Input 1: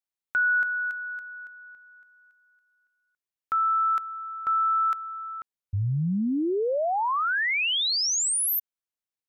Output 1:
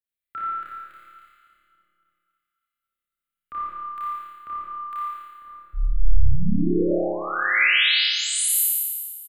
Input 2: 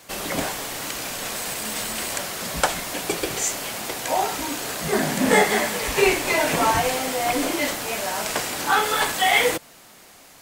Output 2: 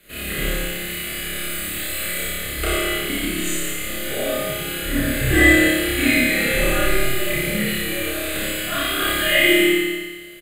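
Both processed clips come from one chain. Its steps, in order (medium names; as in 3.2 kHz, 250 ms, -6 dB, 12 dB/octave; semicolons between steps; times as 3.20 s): reverb removal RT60 0.98 s; static phaser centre 2.5 kHz, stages 4; frequency shift -130 Hz; doubling 32 ms -7 dB; on a send: flutter echo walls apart 4.9 m, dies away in 1.1 s; on the sum: Schroeder reverb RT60 1.3 s, combs from 31 ms, DRR -4.5 dB; trim -3.5 dB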